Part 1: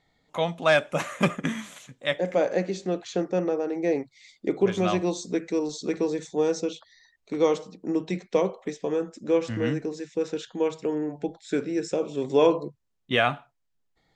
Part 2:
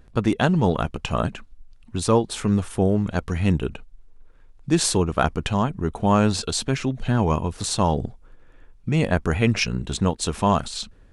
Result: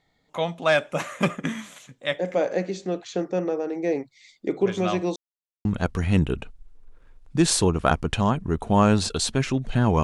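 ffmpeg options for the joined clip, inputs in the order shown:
-filter_complex "[0:a]apad=whole_dur=10.03,atrim=end=10.03,asplit=2[a][b];[a]atrim=end=5.16,asetpts=PTS-STARTPTS,afade=t=out:st=5.156:d=0.004:c=hsin[c];[b]atrim=start=5.16:end=5.65,asetpts=PTS-STARTPTS,volume=0[d];[1:a]atrim=start=2.98:end=7.36,asetpts=PTS-STARTPTS,afade=t=in:d=0.004:c=hsin[e];[c][d][e]concat=n=3:v=0:a=1"

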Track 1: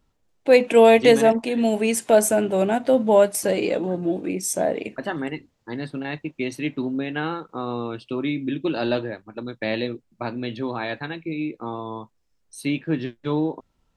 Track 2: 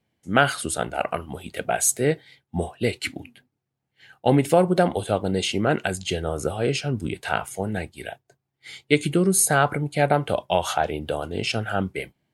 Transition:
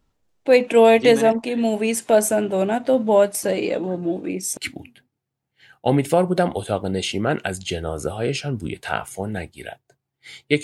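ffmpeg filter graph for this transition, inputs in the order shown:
-filter_complex "[0:a]apad=whole_dur=10.63,atrim=end=10.63,atrim=end=4.572[a];[1:a]atrim=start=2.968:end=9.03[b];[a][b]acrossfade=d=0.004:c1=hsin:c2=hsin"

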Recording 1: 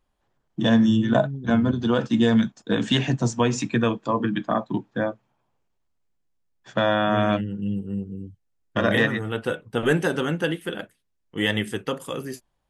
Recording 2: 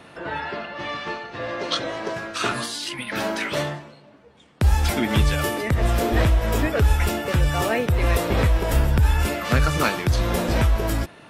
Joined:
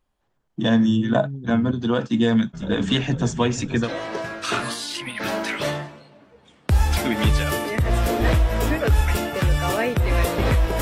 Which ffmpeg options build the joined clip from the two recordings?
-filter_complex "[0:a]asplit=3[a][b][c];[a]afade=t=out:st=2.53:d=0.02[d];[b]asplit=8[e][f][g][h][i][j][k][l];[f]adelay=492,afreqshift=-31,volume=-12dB[m];[g]adelay=984,afreqshift=-62,volume=-16.2dB[n];[h]adelay=1476,afreqshift=-93,volume=-20.3dB[o];[i]adelay=1968,afreqshift=-124,volume=-24.5dB[p];[j]adelay=2460,afreqshift=-155,volume=-28.6dB[q];[k]adelay=2952,afreqshift=-186,volume=-32.8dB[r];[l]adelay=3444,afreqshift=-217,volume=-36.9dB[s];[e][m][n][o][p][q][r][s]amix=inputs=8:normalize=0,afade=t=in:st=2.53:d=0.02,afade=t=out:st=3.9:d=0.02[t];[c]afade=t=in:st=3.9:d=0.02[u];[d][t][u]amix=inputs=3:normalize=0,apad=whole_dur=10.81,atrim=end=10.81,atrim=end=3.9,asetpts=PTS-STARTPTS[v];[1:a]atrim=start=1.74:end=8.73,asetpts=PTS-STARTPTS[w];[v][w]acrossfade=d=0.08:c1=tri:c2=tri"

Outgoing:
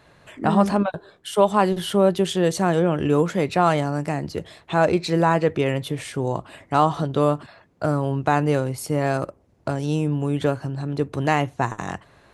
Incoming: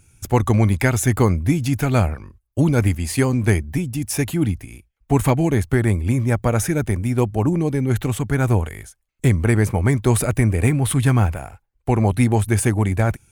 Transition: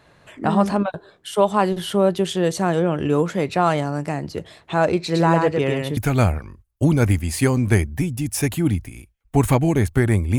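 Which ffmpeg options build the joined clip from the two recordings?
-filter_complex "[0:a]asettb=1/sr,asplit=3[a][b][c];[a]atrim=end=5.034[d];[b]atrim=start=5.03:end=5.97,asetpts=PTS-STARTPTS,afade=t=in:d=0.004:c=qsin,afade=t=out:st=0.936:d=0.004:c=qsin,aecho=1:1:109:0.668,atrim=end_sample=41454[e];[c]atrim=start=5.966[f];[d][e]acrossfade=d=0.004:c1=hsin:c2=qsin[g];[g][f]acrossfade=d=0.004:c1=qsin:c2=hsin,apad=whole_dur=10.38,atrim=end=10.38,atrim=end=5.972[h];[1:a]atrim=start=1.728:end=6.14[i];[h][i]acrossfade=d=0.004:c1=hsin:c2=hsin"

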